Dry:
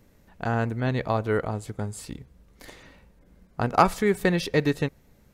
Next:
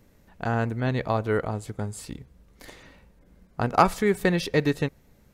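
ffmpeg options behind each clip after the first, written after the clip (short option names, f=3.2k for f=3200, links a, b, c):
-af anull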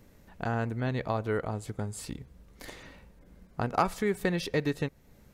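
-af "acompressor=threshold=-38dB:ratio=1.5,volume=1dB"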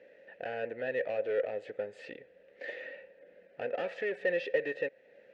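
-filter_complex "[0:a]asplit=2[a][b];[b]highpass=f=720:p=1,volume=25dB,asoftclip=type=tanh:threshold=-12.5dB[c];[a][c]amix=inputs=2:normalize=0,lowpass=f=2.7k:p=1,volume=-6dB,asplit=3[d][e][f];[d]bandpass=f=530:t=q:w=8,volume=0dB[g];[e]bandpass=f=1.84k:t=q:w=8,volume=-6dB[h];[f]bandpass=f=2.48k:t=q:w=8,volume=-9dB[i];[g][h][i]amix=inputs=3:normalize=0,adynamicsmooth=sensitivity=1.5:basefreq=6.5k"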